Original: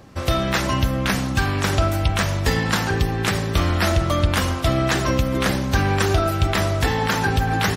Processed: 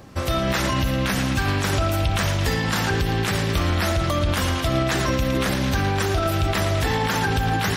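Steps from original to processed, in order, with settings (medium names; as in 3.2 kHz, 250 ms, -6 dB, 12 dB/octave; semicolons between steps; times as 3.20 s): treble shelf 11 kHz +4 dB; on a send: band-passed feedback delay 111 ms, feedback 83%, band-pass 3 kHz, level -9 dB; on the sum: peak limiter -14.5 dBFS, peak gain reduction 7 dB; trim +1.5 dB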